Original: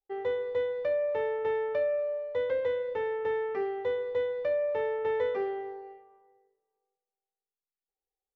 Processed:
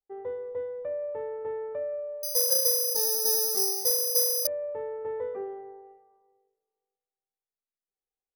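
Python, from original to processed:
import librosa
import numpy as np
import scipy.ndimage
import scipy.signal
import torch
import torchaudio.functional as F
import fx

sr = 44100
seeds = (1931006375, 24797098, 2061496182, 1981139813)

y = scipy.signal.sosfilt(scipy.signal.butter(2, 1100.0, 'lowpass', fs=sr, output='sos'), x)
y = y + 10.0 ** (-21.5 / 20.0) * np.pad(y, (int(170 * sr / 1000.0), 0))[:len(y)]
y = fx.resample_bad(y, sr, factor=8, down='none', up='zero_stuff', at=(2.23, 4.47))
y = y * 10.0 ** (-4.0 / 20.0)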